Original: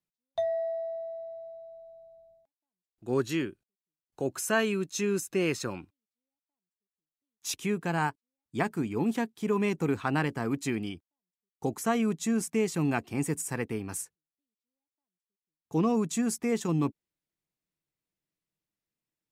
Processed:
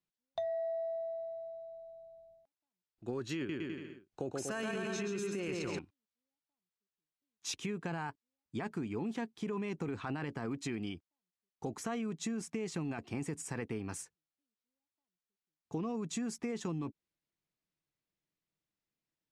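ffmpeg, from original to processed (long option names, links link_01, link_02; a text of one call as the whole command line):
ffmpeg -i in.wav -filter_complex "[0:a]asettb=1/sr,asplit=3[link_01][link_02][link_03];[link_01]atrim=end=3.364[link_04];[link_02]atrim=start=3.36:end=5.79,asetpts=PTS-STARTPTS,afade=type=in:duration=0.004:curve=qsin,afade=type=out:start_time=2.426:duration=0.004:curve=qsin,aecho=1:1:130|240.5|334.4|414.3|482.1|539.8:0.631|0.398|0.251|0.158|0.1|0.0631,atrim=end_sample=107163[link_05];[link_03]atrim=start=5.786[link_06];[link_04][link_05]acrossfade=duration=0.004:curve1=hsin:curve2=qsin[link_07];[link_07][link_06]acrossfade=duration=0.004:curve1=qsin:curve2=hsin,lowpass=6200,alimiter=limit=-23.5dB:level=0:latency=1:release=12,acompressor=threshold=-33dB:ratio=6,volume=-1dB" out.wav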